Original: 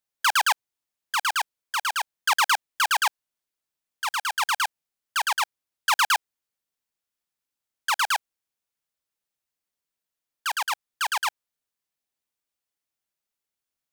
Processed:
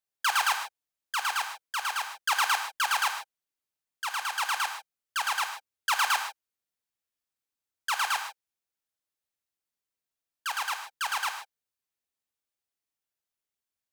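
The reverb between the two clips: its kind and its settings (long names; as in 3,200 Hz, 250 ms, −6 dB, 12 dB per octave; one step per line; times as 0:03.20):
reverb whose tail is shaped and stops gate 170 ms flat, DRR 5 dB
level −5 dB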